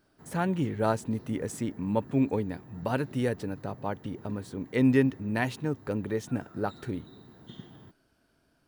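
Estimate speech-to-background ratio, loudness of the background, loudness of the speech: 19.5 dB, -50.0 LUFS, -30.5 LUFS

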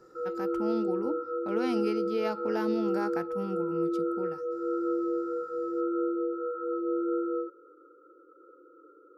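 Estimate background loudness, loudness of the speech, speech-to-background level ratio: -31.5 LUFS, -36.0 LUFS, -4.5 dB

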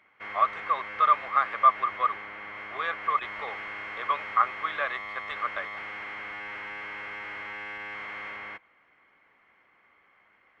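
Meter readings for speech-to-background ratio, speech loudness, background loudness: 10.0 dB, -27.0 LUFS, -37.0 LUFS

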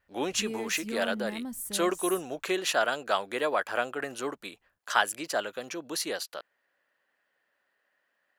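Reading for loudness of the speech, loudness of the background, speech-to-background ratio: -30.5 LUFS, -37.5 LUFS, 7.0 dB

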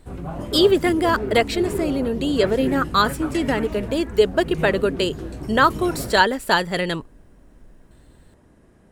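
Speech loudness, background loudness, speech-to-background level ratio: -20.5 LUFS, -30.0 LUFS, 9.5 dB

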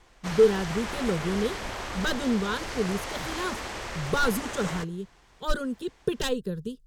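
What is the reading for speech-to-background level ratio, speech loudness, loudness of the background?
5.5 dB, -29.0 LUFS, -34.5 LUFS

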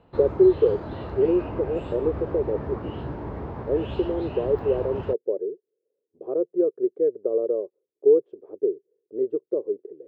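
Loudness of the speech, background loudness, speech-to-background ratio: -25.0 LUFS, -34.5 LUFS, 9.5 dB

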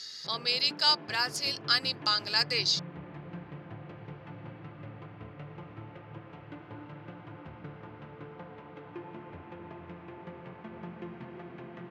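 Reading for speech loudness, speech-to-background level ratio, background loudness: -27.0 LUFS, 18.5 dB, -45.5 LUFS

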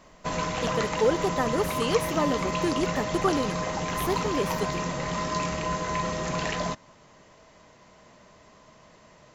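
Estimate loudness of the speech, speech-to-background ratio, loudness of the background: -29.0 LUFS, 0.5 dB, -29.5 LUFS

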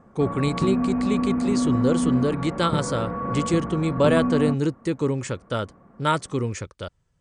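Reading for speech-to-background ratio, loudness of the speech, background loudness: 0.5 dB, -25.0 LUFS, -25.5 LUFS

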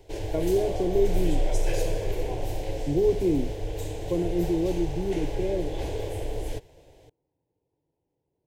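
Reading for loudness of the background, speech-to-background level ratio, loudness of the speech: -33.0 LUFS, 5.5 dB, -27.5 LUFS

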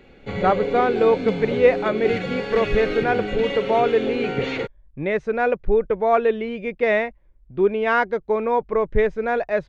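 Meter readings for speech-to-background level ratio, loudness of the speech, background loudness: 5.0 dB, -21.5 LUFS, -26.5 LUFS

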